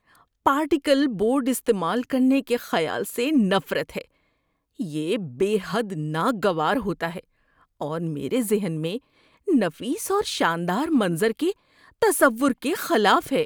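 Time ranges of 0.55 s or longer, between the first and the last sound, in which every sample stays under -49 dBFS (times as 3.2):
4.05–4.79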